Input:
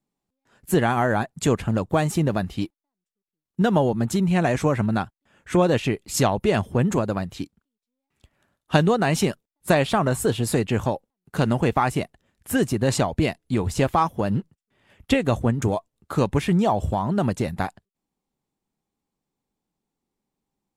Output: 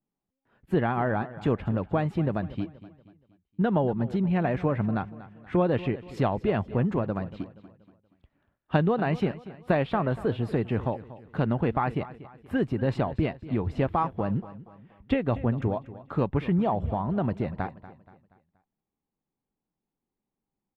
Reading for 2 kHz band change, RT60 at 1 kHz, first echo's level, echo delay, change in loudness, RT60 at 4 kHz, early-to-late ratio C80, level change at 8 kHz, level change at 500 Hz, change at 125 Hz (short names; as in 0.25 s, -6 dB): -7.5 dB, none, -16.5 dB, 0.238 s, -5.0 dB, none, none, under -30 dB, -5.0 dB, -4.0 dB